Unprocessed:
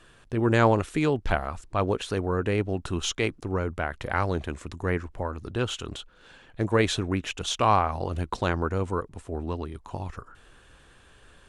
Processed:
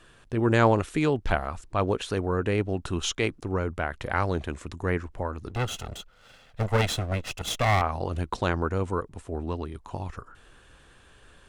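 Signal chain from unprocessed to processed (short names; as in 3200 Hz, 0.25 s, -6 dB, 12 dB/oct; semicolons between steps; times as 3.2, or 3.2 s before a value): 5.49–7.82 minimum comb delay 1.5 ms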